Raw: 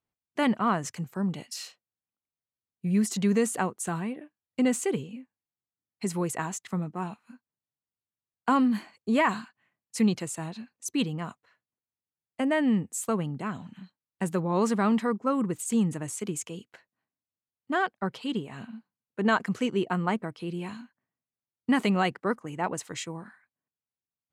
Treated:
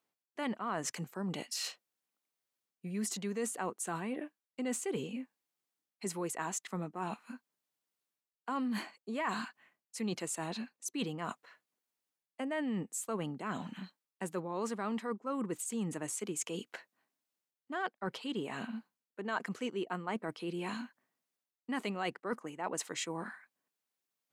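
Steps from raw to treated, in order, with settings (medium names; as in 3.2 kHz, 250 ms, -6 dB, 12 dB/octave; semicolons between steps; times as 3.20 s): high-pass 260 Hz 12 dB/octave; reverse; compression 4:1, threshold -43 dBFS, peak gain reduction 20 dB; reverse; trim +6.5 dB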